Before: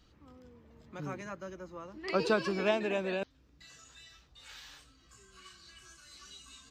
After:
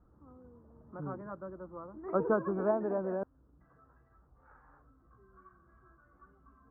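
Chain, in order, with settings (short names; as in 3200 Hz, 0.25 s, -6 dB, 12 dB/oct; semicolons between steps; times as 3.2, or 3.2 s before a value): steep low-pass 1400 Hz 48 dB/oct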